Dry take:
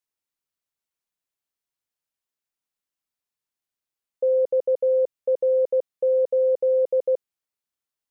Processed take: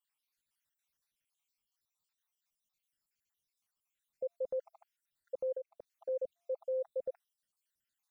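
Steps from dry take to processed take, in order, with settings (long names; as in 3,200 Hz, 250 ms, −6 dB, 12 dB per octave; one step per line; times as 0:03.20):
time-frequency cells dropped at random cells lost 62%
parametric band 450 Hz −13 dB 1.2 octaves
0:05.52–0:06.09: downward compressor, threshold −46 dBFS, peak gain reduction 14.5 dB
brickwall limiter −35.5 dBFS, peak gain reduction 8.5 dB
level +5.5 dB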